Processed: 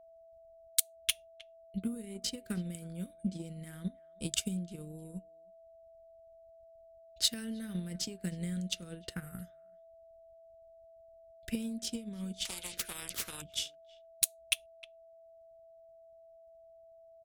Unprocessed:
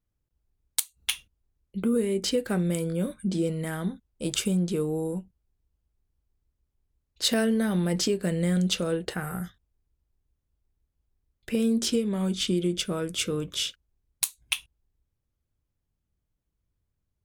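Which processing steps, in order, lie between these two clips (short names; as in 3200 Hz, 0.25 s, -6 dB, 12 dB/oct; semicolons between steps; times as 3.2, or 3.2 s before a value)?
passive tone stack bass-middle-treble 6-0-2; speakerphone echo 0.31 s, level -17 dB; transient shaper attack +11 dB, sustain -7 dB; in parallel at -7 dB: hard clip -22.5 dBFS, distortion -12 dB; on the sum: whine 660 Hz -55 dBFS; 12.45–13.42 spectral compressor 10:1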